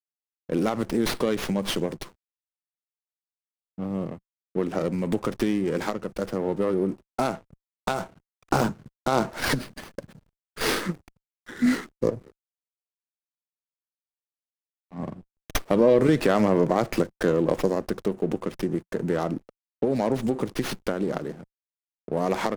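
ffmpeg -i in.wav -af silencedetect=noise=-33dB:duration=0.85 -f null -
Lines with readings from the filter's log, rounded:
silence_start: 2.03
silence_end: 3.78 | silence_duration: 1.75
silence_start: 12.17
silence_end: 14.96 | silence_duration: 2.78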